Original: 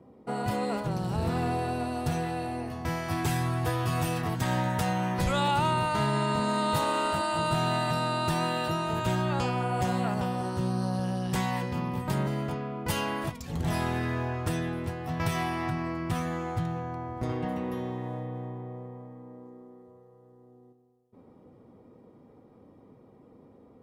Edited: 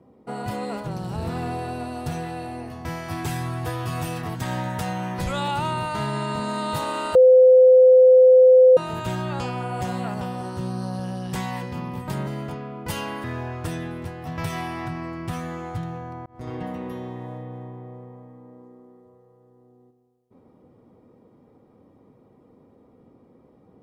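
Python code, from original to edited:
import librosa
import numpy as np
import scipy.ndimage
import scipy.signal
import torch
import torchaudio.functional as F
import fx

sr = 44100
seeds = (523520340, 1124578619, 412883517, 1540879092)

y = fx.edit(x, sr, fx.bleep(start_s=7.15, length_s=1.62, hz=512.0, db=-8.5),
    fx.cut(start_s=13.24, length_s=0.82),
    fx.fade_in_span(start_s=17.08, length_s=0.29), tone=tone)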